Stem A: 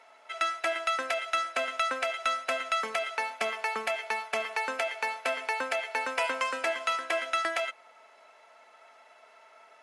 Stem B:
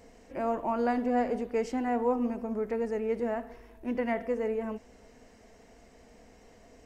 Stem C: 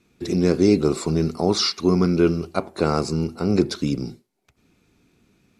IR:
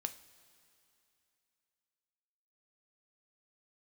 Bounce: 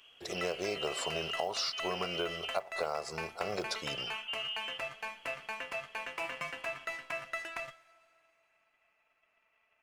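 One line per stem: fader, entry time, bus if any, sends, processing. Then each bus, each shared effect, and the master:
-3.5 dB, 0.00 s, bus A, send -4 dB, band-stop 3.3 kHz, Q 17; saturation -25 dBFS, distortion -16 dB; Chebyshev shaper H 3 -11 dB, 8 -29 dB, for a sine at -25 dBFS
-6.0 dB, 0.00 s, muted 2.55–3.55 s, bus A, no send, none
-6.0 dB, 0.00 s, no bus, no send, resonant low shelf 410 Hz -14 dB, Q 3; short-mantissa float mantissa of 4-bit
bus A: 0.0 dB, frequency inversion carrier 3.3 kHz; peak limiter -30.5 dBFS, peak gain reduction 11.5 dB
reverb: on, pre-delay 3 ms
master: compression 10:1, threshold -30 dBFS, peak gain reduction 12.5 dB

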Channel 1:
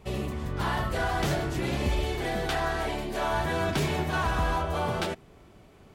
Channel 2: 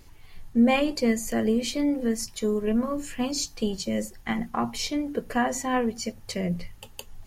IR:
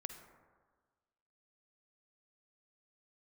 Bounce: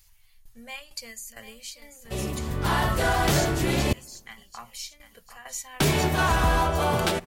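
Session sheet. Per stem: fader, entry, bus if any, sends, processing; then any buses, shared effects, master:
0.0 dB, 2.05 s, muted 3.93–5.80 s, send -15.5 dB, no echo send, level rider gain up to 4 dB
-2.5 dB, 0.00 s, no send, echo send -11 dB, amplifier tone stack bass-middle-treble 10-0-10; tremolo saw down 2.2 Hz, depth 75%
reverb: on, RT60 1.5 s, pre-delay 43 ms
echo: feedback delay 741 ms, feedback 34%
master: treble shelf 7.1 kHz +9 dB

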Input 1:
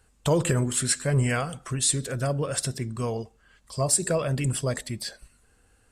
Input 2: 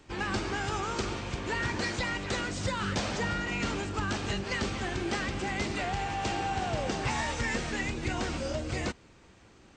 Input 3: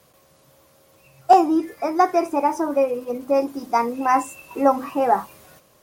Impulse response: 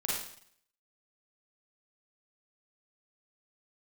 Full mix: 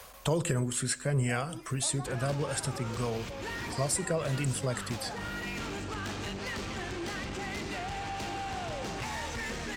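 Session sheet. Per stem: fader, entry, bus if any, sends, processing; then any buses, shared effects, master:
-4.0 dB, 0.00 s, no bus, no send, none
-3.0 dB, 1.95 s, bus A, send -16 dB, saturation -33.5 dBFS, distortion -10 dB
+2.5 dB, 0.00 s, bus A, no send, high-pass 740 Hz 12 dB/octave; compression, threshold -27 dBFS, peak gain reduction 15 dB; auto duck -12 dB, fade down 0.45 s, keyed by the first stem
bus A: 0.0 dB, peak limiter -36.5 dBFS, peak gain reduction 11.5 dB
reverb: on, RT60 0.60 s, pre-delay 36 ms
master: three bands compressed up and down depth 40%

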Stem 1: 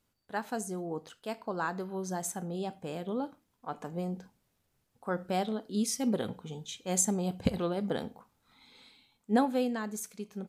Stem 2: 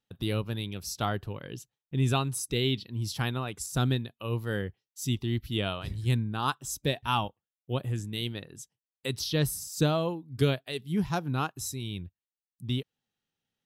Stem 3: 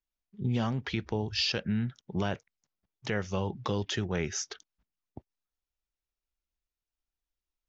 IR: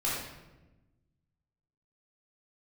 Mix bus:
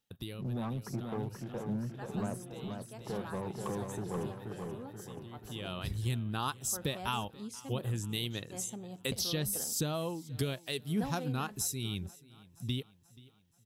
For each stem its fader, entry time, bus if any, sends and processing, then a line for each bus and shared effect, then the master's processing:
-13.5 dB, 1.65 s, no send, no echo send, none
0.0 dB, 0.00 s, no send, echo send -22 dB, treble shelf 5.5 kHz +8.5 dB; compression 5:1, threshold -31 dBFS, peak gain reduction 11 dB; auto duck -18 dB, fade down 0.65 s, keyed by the third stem
-10.0 dB, 0.00 s, no send, echo send -5 dB, Chebyshev band-pass 120–1200 Hz, order 3; waveshaping leveller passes 2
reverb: none
echo: feedback delay 481 ms, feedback 51%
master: none

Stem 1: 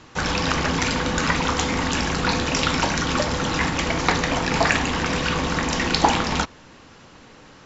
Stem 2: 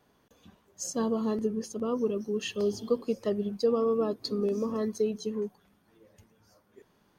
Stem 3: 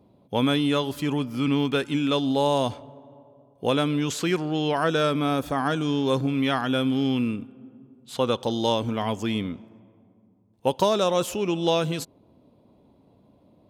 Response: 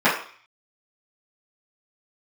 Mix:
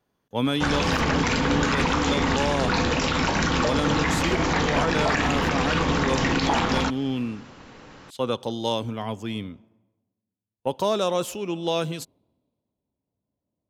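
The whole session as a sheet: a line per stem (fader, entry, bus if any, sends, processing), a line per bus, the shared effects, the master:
+1.5 dB, 0.45 s, no send, treble shelf 4.8 kHz -7 dB
-8.0 dB, 0.00 s, no send, none
-2.0 dB, 0.00 s, no send, three bands expanded up and down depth 70%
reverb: none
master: peak limiter -12.5 dBFS, peak gain reduction 10 dB

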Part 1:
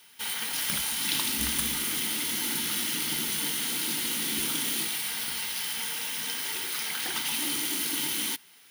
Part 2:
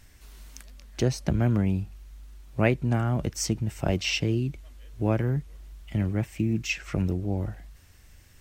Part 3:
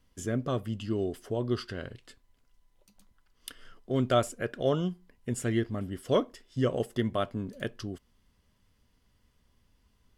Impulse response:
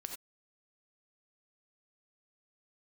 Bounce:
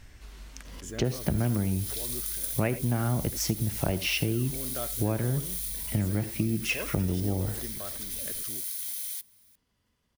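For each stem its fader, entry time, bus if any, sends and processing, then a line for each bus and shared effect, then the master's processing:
-6.5 dB, 0.85 s, no send, high-pass 350 Hz; differentiator; band-stop 2.9 kHz, Q 5.2
+0.5 dB, 0.00 s, send -3.5 dB, treble shelf 7.6 kHz -11 dB
-4.0 dB, 0.65 s, send -18.5 dB, high-pass 99 Hz 6 dB/octave; swell ahead of each attack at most 55 dB/s; auto duck -11 dB, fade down 1.85 s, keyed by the second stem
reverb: on, pre-delay 3 ms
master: compression 4:1, threshold -24 dBFS, peak gain reduction 10 dB

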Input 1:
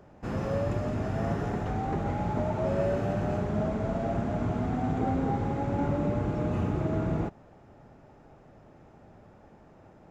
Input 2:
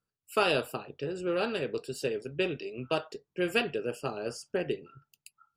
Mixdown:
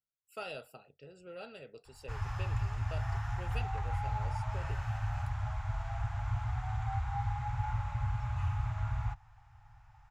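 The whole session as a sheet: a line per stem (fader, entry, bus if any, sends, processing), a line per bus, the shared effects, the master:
-3.0 dB, 1.85 s, no send, Chebyshev band-stop 120–820 Hz, order 4; bass shelf 67 Hz +9.5 dB
-17.0 dB, 0.00 s, no send, band-stop 1.2 kHz; comb 1.5 ms, depth 50%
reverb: none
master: none

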